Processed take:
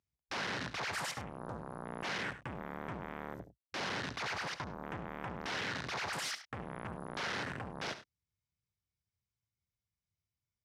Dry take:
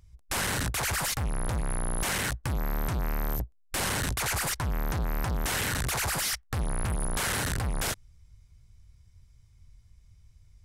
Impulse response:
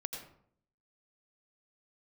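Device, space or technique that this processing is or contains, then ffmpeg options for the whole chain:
over-cleaned archive recording: -af "highpass=180,lowpass=6.9k,afwtdn=0.01,aecho=1:1:71|100:0.237|0.133,volume=-6.5dB"

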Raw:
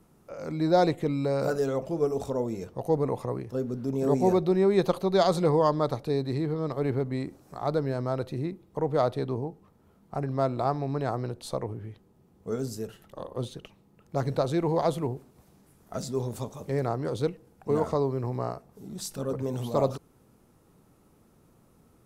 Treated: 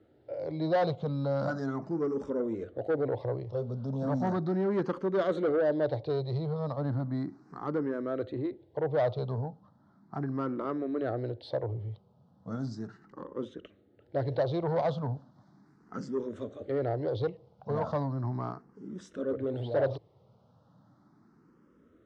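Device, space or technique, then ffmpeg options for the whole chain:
barber-pole phaser into a guitar amplifier: -filter_complex "[0:a]asplit=2[a][b];[b]afreqshift=0.36[c];[a][c]amix=inputs=2:normalize=1,asoftclip=type=tanh:threshold=-25dB,highpass=89,equalizer=f=110:t=q:w=4:g=6,equalizer=f=300:t=q:w=4:g=4,equalizer=f=580:t=q:w=4:g=5,equalizer=f=1.5k:t=q:w=4:g=3,equalizer=f=2.5k:t=q:w=4:g=-10,lowpass=f=4.5k:w=0.5412,lowpass=f=4.5k:w=1.3066"

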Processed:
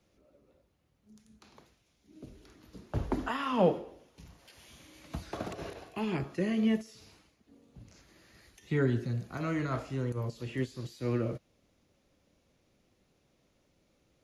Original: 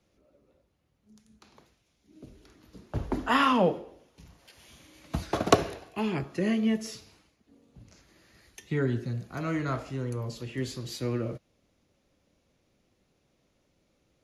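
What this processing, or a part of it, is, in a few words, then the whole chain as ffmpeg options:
de-esser from a sidechain: -filter_complex "[0:a]asplit=2[a][b];[b]highpass=f=4.7k:w=0.5412,highpass=f=4.7k:w=1.3066,apad=whole_len=627939[c];[a][c]sidechaincompress=threshold=-56dB:ratio=4:attack=2:release=50"

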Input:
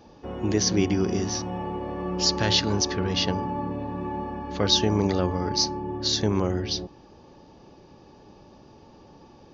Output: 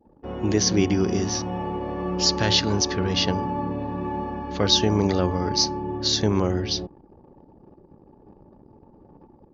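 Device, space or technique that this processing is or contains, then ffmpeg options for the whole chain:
voice memo with heavy noise removal: -af "anlmdn=0.0158,dynaudnorm=f=160:g=3:m=5dB,volume=-2.5dB"

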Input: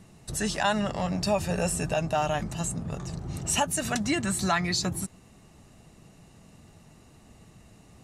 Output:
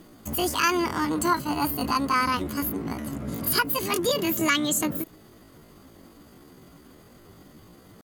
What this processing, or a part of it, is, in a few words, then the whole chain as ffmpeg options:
chipmunk voice: -filter_complex "[0:a]asettb=1/sr,asplit=3[a][b][c];[a]atrim=end=1.354[d];[b]atrim=start=1.35:end=1.82,asetpts=PTS-STARTPTS,afade=t=in:d=0.004:c=qsin,afade=t=out:st=0.466:d=0.004:c=qsin,agate=range=-33dB:threshold=-25dB:ratio=3:detection=peak[e];[c]atrim=start=1.816[f];[d][e]acrossfade=d=0.004:c1=hsin:c2=qsin[g];[g][f]acrossfade=d=0.004:c1=qsin:c2=hsin,asetrate=74167,aresample=44100,atempo=0.594604,volume=3dB"

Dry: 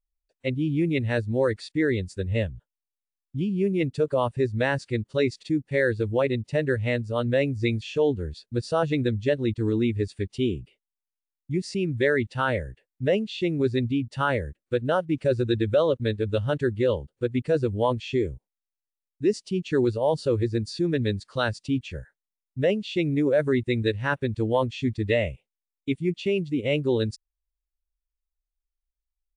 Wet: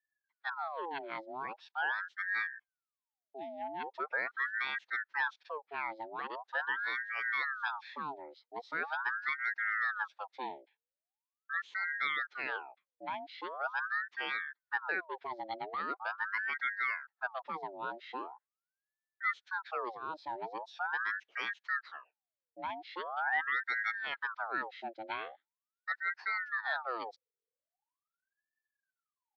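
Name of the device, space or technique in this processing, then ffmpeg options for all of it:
voice changer toy: -af "aeval=exprs='val(0)*sin(2*PI*1100*n/s+1100*0.6/0.42*sin(2*PI*0.42*n/s))':c=same,highpass=560,equalizer=f=590:t=q:w=4:g=-5,equalizer=f=1.1k:t=q:w=4:g=-7,equalizer=f=1.7k:t=q:w=4:g=4,equalizer=f=2.9k:t=q:w=4:g=-7,lowpass=f=3.9k:w=0.5412,lowpass=f=3.9k:w=1.3066,volume=-7.5dB"

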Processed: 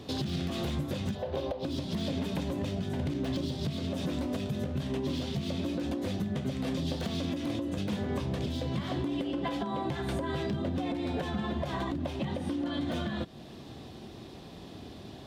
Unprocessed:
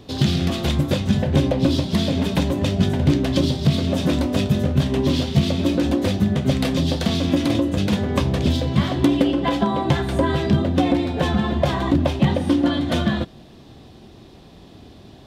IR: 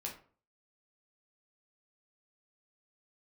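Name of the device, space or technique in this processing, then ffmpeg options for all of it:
podcast mastering chain: -filter_complex "[0:a]asettb=1/sr,asplit=3[a][b][c];[a]atrim=end=1.154[d];[b]atrim=start=1.15:end=1.65,asetpts=PTS-STARTPTS,afade=t=in:d=0.004:c=qsin,afade=t=out:st=0.496:d=0.004:c=qsin,equalizer=f=125:t=o:w=1:g=-10,equalizer=f=250:t=o:w=1:g=-10,equalizer=f=500:t=o:w=1:g=8,equalizer=f=1k:t=o:w=1:g=4,equalizer=f=2k:t=o:w=1:g=-6,equalizer=f=4k:t=o:w=1:g=4,equalizer=f=8k:t=o:w=1:g=-11[e];[c]atrim=start=1.646[f];[d][e]acrossfade=d=0.004:c1=hsin:c2=qsin[g];[g][f]acrossfade=d=0.004:c1=qsin:c2=hsin,highpass=f=83:p=1,deesser=0.75,acompressor=threshold=-24dB:ratio=3,alimiter=limit=-23dB:level=0:latency=1:release=290" -ar 48000 -c:a libmp3lame -b:a 96k

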